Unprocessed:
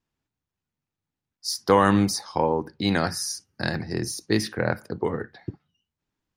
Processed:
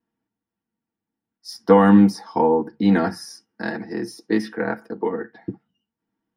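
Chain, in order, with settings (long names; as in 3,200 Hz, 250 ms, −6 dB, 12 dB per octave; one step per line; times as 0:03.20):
0:03.25–0:05.35: high-pass filter 390 Hz 6 dB per octave
convolution reverb, pre-delay 3 ms, DRR 0 dB
level −11 dB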